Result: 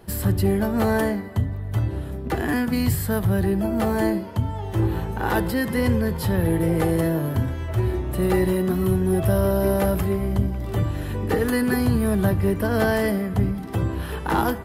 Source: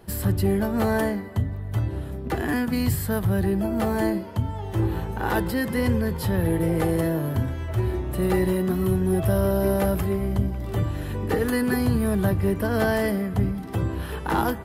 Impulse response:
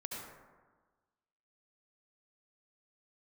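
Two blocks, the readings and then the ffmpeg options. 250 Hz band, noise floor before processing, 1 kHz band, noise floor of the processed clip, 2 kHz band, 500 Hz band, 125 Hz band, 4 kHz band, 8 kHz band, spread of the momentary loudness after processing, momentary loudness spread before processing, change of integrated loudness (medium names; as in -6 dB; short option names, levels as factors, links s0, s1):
+1.5 dB, -33 dBFS, +1.5 dB, -31 dBFS, +1.5 dB, +1.5 dB, +1.5 dB, +1.5 dB, +1.5 dB, 6 LU, 6 LU, +1.5 dB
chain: -filter_complex "[0:a]asplit=2[s0][s1];[1:a]atrim=start_sample=2205,atrim=end_sample=3528[s2];[s1][s2]afir=irnorm=-1:irlink=0,volume=0.376[s3];[s0][s3]amix=inputs=2:normalize=0"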